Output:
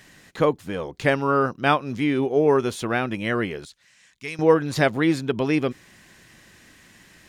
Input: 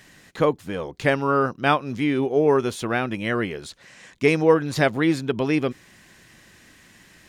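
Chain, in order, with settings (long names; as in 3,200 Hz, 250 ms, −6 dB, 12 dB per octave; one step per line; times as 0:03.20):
0:03.65–0:04.39: guitar amp tone stack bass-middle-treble 5-5-5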